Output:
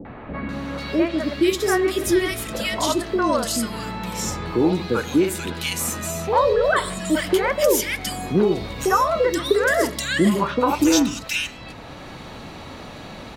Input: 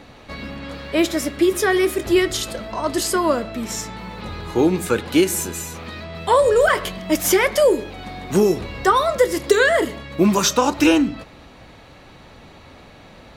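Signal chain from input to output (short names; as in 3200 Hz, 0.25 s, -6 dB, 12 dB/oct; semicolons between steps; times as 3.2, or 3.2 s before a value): three bands offset in time lows, mids, highs 50/490 ms, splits 520/2000 Hz; three-band squash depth 40%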